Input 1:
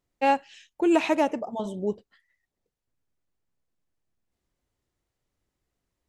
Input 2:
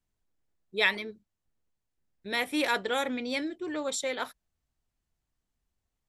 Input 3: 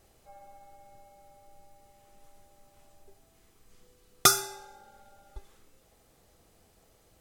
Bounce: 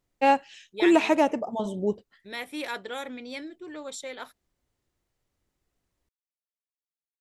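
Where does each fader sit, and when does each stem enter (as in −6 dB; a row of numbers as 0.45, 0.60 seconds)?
+1.5 dB, −6.0 dB, muted; 0.00 s, 0.00 s, muted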